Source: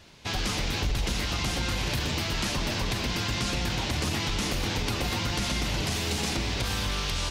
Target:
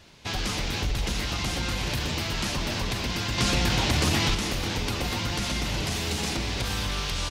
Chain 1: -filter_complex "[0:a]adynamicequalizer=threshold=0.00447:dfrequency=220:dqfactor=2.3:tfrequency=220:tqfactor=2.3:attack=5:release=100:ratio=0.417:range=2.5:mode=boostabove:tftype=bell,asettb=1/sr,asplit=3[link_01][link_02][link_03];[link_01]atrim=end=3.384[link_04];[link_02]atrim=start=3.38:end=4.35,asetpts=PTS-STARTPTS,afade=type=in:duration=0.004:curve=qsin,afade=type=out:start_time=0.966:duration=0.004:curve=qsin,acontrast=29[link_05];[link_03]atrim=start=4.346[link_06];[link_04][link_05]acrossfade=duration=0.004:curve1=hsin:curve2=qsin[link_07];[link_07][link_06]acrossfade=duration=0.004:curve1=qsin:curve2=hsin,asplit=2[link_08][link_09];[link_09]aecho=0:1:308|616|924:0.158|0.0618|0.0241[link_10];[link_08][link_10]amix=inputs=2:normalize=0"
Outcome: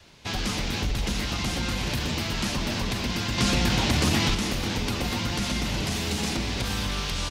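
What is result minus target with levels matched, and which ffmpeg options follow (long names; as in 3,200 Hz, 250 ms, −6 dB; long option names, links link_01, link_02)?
250 Hz band +2.5 dB
-filter_complex "[0:a]asettb=1/sr,asplit=3[link_01][link_02][link_03];[link_01]atrim=end=3.384[link_04];[link_02]atrim=start=3.38:end=4.35,asetpts=PTS-STARTPTS,afade=type=in:duration=0.004:curve=qsin,afade=type=out:start_time=0.966:duration=0.004:curve=qsin,acontrast=29[link_05];[link_03]atrim=start=4.346[link_06];[link_04][link_05]acrossfade=duration=0.004:curve1=hsin:curve2=qsin[link_07];[link_07][link_06]acrossfade=duration=0.004:curve1=qsin:curve2=hsin,asplit=2[link_08][link_09];[link_09]aecho=0:1:308|616|924:0.158|0.0618|0.0241[link_10];[link_08][link_10]amix=inputs=2:normalize=0"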